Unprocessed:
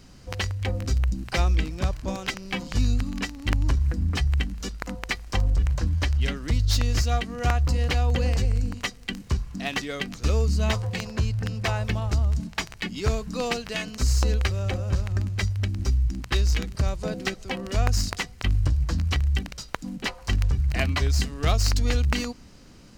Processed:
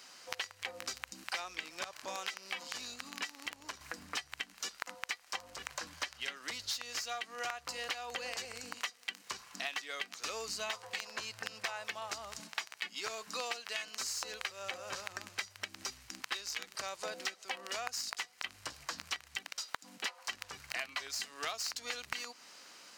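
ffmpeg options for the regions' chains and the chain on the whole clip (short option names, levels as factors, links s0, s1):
-filter_complex "[0:a]asettb=1/sr,asplit=3[s0][s1][s2];[s0]atrim=end=1.844[s3];[s1]atrim=start=1.84:end=3.81,asetpts=PTS-STARTPTS,afade=t=in:d=0.004:c=qsin,afade=t=out:st=1.966:d=0.004:c=qsin,acompressor=threshold=0.0355:ratio=2:attack=3.2:release=140:knee=1:detection=peak,asoftclip=type=hard:threshold=0.075[s4];[s2]atrim=start=3.806[s5];[s3][s4]acrossfade=d=0.004:c1=hsin:c2=qsin[s6];[s6][s5]acrossfade=d=0.004:c1=qsin:c2=hsin,highpass=890,acompressor=threshold=0.0112:ratio=6,volume=1.41"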